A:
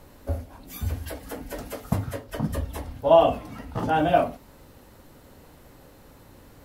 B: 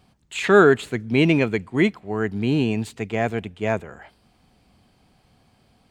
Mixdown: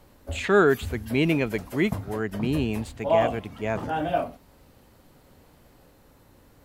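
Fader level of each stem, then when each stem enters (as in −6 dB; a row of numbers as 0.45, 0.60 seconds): −5.5, −5.0 decibels; 0.00, 0.00 seconds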